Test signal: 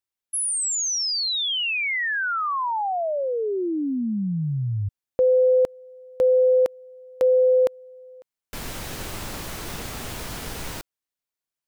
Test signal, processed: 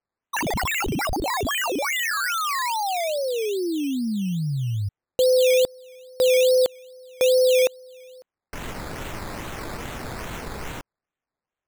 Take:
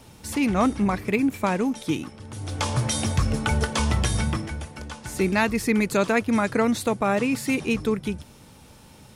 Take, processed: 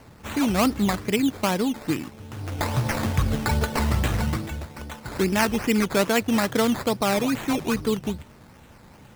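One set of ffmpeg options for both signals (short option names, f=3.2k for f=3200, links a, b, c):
-af "acrusher=samples=12:mix=1:aa=0.000001:lfo=1:lforange=7.2:lforate=2.4"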